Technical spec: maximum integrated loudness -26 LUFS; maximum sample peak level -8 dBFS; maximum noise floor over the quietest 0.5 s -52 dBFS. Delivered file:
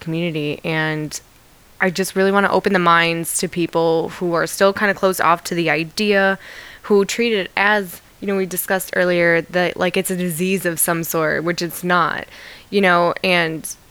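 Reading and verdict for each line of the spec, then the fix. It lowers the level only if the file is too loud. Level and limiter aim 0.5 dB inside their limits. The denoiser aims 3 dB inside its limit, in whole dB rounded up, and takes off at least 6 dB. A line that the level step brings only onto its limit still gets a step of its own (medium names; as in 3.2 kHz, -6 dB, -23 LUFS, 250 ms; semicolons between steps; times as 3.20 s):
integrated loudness -18.0 LUFS: fail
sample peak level -1.5 dBFS: fail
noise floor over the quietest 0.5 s -49 dBFS: fail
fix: trim -8.5 dB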